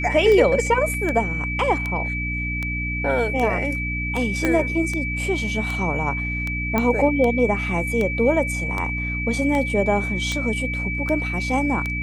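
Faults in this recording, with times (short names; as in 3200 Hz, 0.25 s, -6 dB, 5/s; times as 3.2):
hum 60 Hz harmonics 5 -28 dBFS
tick 78 rpm -13 dBFS
tone 2300 Hz -26 dBFS
0.94 gap 2.2 ms
4.45 pop -8 dBFS
6.78 pop -8 dBFS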